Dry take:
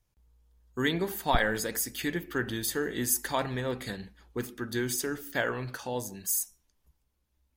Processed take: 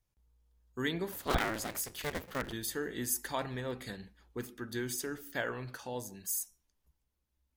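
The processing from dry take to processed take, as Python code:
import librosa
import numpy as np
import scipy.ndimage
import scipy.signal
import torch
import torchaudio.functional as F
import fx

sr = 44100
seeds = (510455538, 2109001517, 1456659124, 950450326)

y = fx.cycle_switch(x, sr, every=2, mode='inverted', at=(1.11, 2.51), fade=0.02)
y = y * librosa.db_to_amplitude(-6.0)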